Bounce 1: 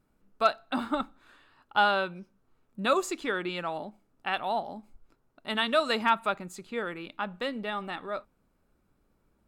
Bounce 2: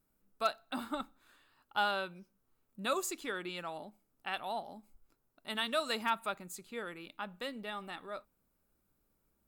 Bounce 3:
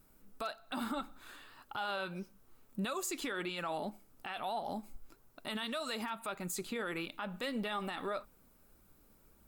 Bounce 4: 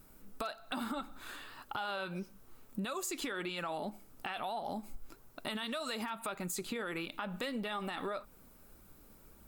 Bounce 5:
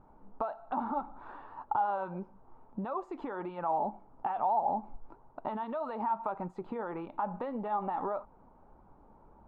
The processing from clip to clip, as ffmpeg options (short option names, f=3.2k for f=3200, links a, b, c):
-af "aemphasis=mode=production:type=50fm,volume=-8.5dB"
-af "acompressor=threshold=-41dB:ratio=12,flanger=delay=0.6:depth=4.2:regen=73:speed=1.7:shape=triangular,alimiter=level_in=21.5dB:limit=-24dB:level=0:latency=1:release=44,volume=-21.5dB,volume=16.5dB"
-af "acompressor=threshold=-42dB:ratio=4,volume=6dB"
-af "lowpass=f=890:t=q:w=4.9"